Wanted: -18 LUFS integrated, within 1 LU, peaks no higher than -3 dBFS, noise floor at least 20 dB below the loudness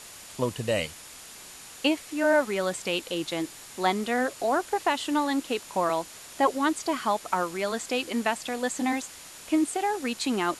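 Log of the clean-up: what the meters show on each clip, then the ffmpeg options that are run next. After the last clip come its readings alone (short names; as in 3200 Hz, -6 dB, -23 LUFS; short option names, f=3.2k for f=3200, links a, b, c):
steady tone 7000 Hz; tone level -53 dBFS; noise floor -46 dBFS; noise floor target -48 dBFS; loudness -28.0 LUFS; peak -11.0 dBFS; loudness target -18.0 LUFS
-> -af "bandreject=f=7k:w=30"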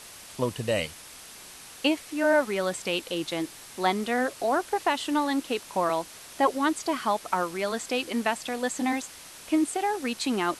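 steady tone none; noise floor -46 dBFS; noise floor target -48 dBFS
-> -af "afftdn=nr=6:nf=-46"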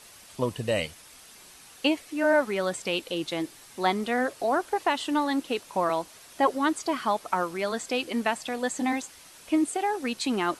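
noise floor -51 dBFS; loudness -28.0 LUFS; peak -11.0 dBFS; loudness target -18.0 LUFS
-> -af "volume=10dB,alimiter=limit=-3dB:level=0:latency=1"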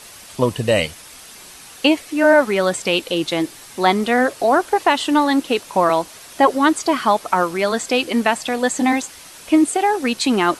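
loudness -18.0 LUFS; peak -3.0 dBFS; noise floor -41 dBFS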